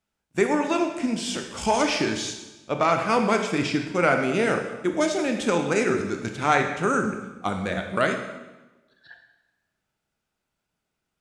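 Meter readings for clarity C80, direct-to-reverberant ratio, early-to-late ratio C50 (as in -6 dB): 8.5 dB, 4.0 dB, 6.5 dB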